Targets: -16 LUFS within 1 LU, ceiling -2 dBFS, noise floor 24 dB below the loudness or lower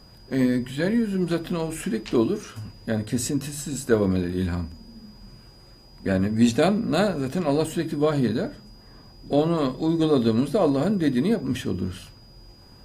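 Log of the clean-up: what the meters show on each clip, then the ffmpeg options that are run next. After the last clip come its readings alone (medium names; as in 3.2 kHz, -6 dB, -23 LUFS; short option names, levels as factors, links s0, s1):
steady tone 4.9 kHz; tone level -53 dBFS; loudness -24.0 LUFS; peak level -6.5 dBFS; loudness target -16.0 LUFS
-> -af "bandreject=f=4900:w=30"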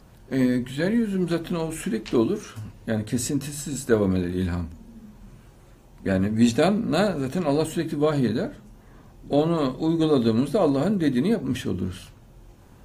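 steady tone not found; loudness -24.0 LUFS; peak level -6.5 dBFS; loudness target -16.0 LUFS
-> -af "volume=2.51,alimiter=limit=0.794:level=0:latency=1"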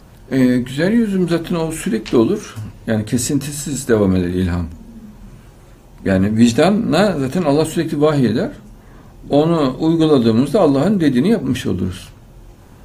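loudness -16.5 LUFS; peak level -2.0 dBFS; noise floor -43 dBFS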